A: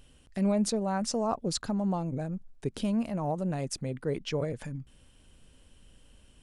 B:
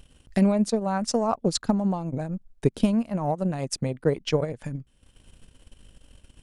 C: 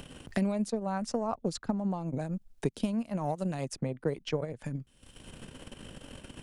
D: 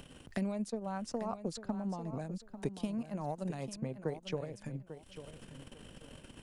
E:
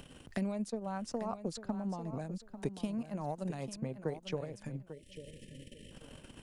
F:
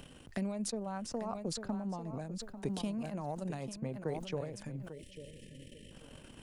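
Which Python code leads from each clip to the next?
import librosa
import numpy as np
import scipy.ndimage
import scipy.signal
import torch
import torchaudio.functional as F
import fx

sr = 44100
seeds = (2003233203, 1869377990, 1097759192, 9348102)

y1 = fx.transient(x, sr, attack_db=8, sustain_db=-10)
y1 = y1 * 10.0 ** (3.5 / 20.0)
y2 = fx.band_squash(y1, sr, depth_pct=70)
y2 = y2 * 10.0 ** (-7.5 / 20.0)
y3 = fx.echo_feedback(y2, sr, ms=845, feedback_pct=25, wet_db=-11.5)
y3 = y3 * 10.0 ** (-6.0 / 20.0)
y4 = fx.spec_erase(y3, sr, start_s=4.93, length_s=0.99, low_hz=610.0, high_hz=1700.0)
y5 = fx.sustainer(y4, sr, db_per_s=59.0)
y5 = y5 * 10.0 ** (-1.5 / 20.0)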